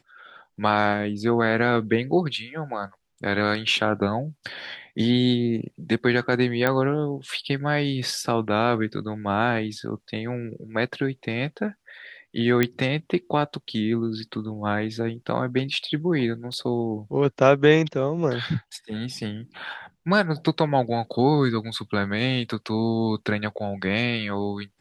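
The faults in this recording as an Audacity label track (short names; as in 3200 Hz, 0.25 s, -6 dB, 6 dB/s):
6.670000	6.670000	pop -9 dBFS
12.630000	12.630000	pop -7 dBFS
16.530000	16.530000	gap 3.4 ms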